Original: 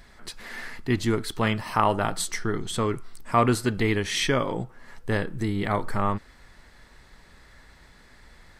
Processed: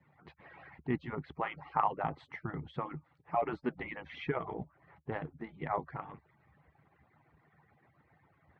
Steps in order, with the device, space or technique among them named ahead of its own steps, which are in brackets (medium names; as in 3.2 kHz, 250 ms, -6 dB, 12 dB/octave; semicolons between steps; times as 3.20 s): harmonic-percussive separation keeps percussive; bass cabinet (cabinet simulation 67–2300 Hz, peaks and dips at 71 Hz +7 dB, 150 Hz +9 dB, 820 Hz +7 dB, 1.6 kHz -5 dB); trim -8.5 dB